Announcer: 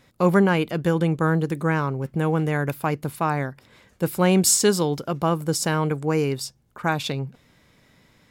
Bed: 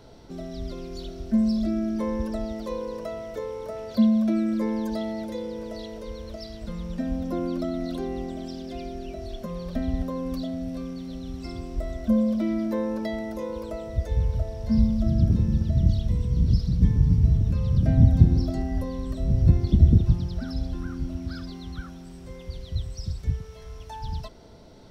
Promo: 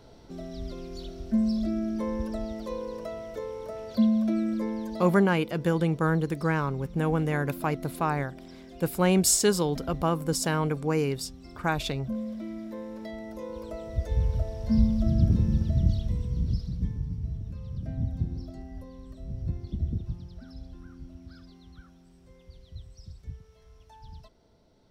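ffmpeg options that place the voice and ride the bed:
-filter_complex "[0:a]adelay=4800,volume=-4dB[a];[1:a]volume=7dB,afade=t=out:st=4.47:d=0.84:silence=0.375837,afade=t=in:st=12.88:d=1.38:silence=0.316228,afade=t=out:st=15.52:d=1.57:silence=0.237137[b];[a][b]amix=inputs=2:normalize=0"

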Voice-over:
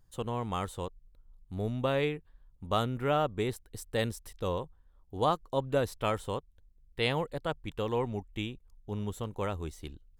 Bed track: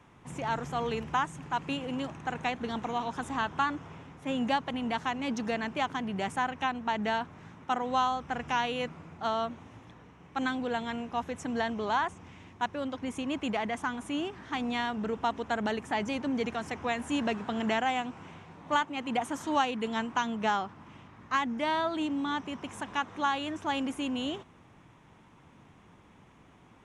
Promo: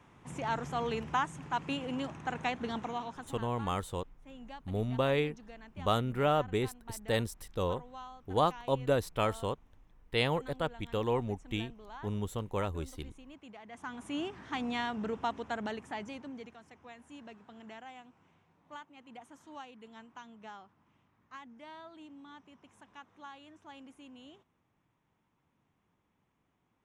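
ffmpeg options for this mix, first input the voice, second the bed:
-filter_complex "[0:a]adelay=3150,volume=0dB[a];[1:a]volume=14.5dB,afade=t=out:st=2.7:d=0.73:silence=0.133352,afade=t=in:st=13.66:d=0.55:silence=0.149624,afade=t=out:st=15.07:d=1.51:silence=0.141254[b];[a][b]amix=inputs=2:normalize=0"

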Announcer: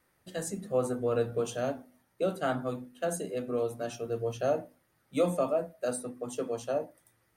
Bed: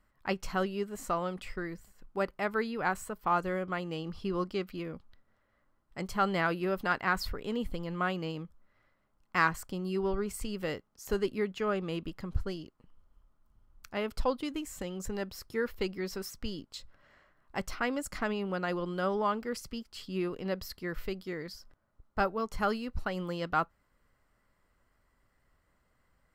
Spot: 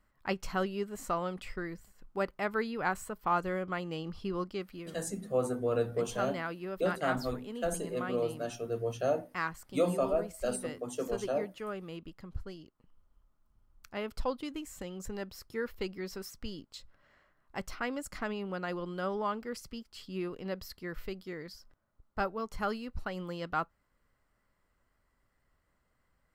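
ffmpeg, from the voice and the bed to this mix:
-filter_complex "[0:a]adelay=4600,volume=-1.5dB[a];[1:a]volume=3.5dB,afade=t=out:st=4.1:d=0.93:silence=0.446684,afade=t=in:st=12.57:d=0.41:silence=0.595662[b];[a][b]amix=inputs=2:normalize=0"

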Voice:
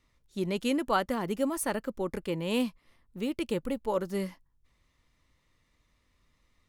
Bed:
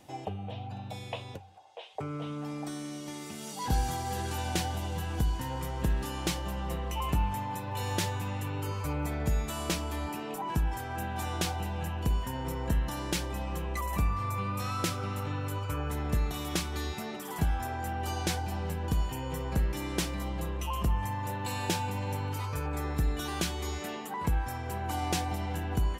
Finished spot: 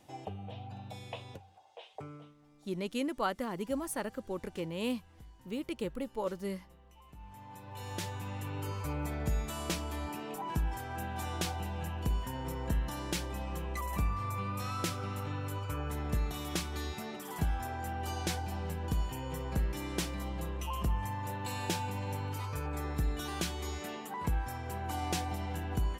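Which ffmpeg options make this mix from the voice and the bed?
-filter_complex "[0:a]adelay=2300,volume=-5.5dB[a];[1:a]volume=17dB,afade=t=out:st=1.86:d=0.48:silence=0.0944061,afade=t=in:st=7.16:d=1.47:silence=0.0794328[b];[a][b]amix=inputs=2:normalize=0"

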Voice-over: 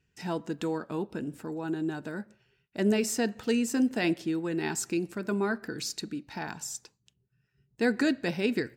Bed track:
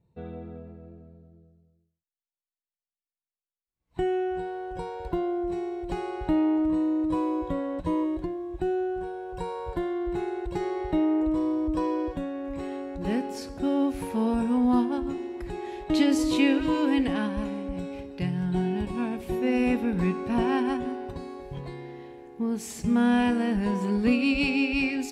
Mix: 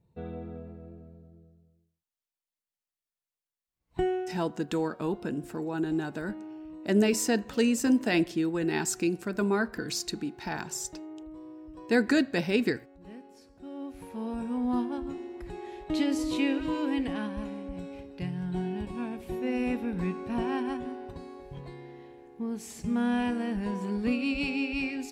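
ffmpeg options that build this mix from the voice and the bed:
-filter_complex "[0:a]adelay=4100,volume=2dB[a];[1:a]volume=13.5dB,afade=t=out:st=4:d=0.4:silence=0.112202,afade=t=in:st=13.59:d=1.27:silence=0.211349[b];[a][b]amix=inputs=2:normalize=0"

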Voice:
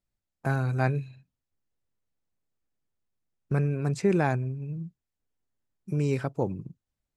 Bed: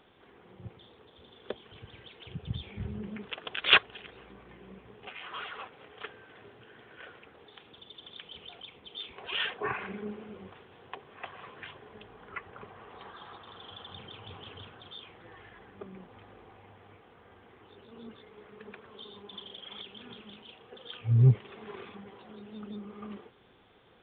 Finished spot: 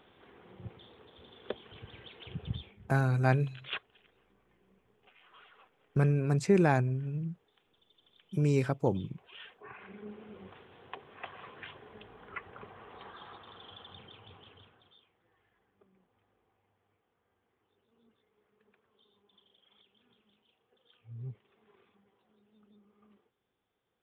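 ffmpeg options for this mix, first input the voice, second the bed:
-filter_complex "[0:a]adelay=2450,volume=-0.5dB[a];[1:a]volume=16.5dB,afade=t=out:st=2.48:d=0.29:silence=0.125893,afade=t=in:st=9.66:d=0.9:silence=0.149624,afade=t=out:st=13.24:d=1.85:silence=0.0944061[b];[a][b]amix=inputs=2:normalize=0"

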